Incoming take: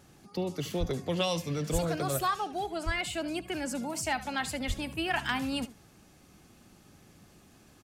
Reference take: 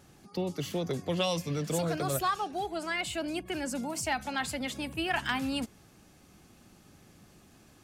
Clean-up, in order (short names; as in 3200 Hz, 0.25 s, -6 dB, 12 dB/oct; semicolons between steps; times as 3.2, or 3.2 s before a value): de-plosive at 0.79/1.72/2.85/4.67; inverse comb 73 ms -16.5 dB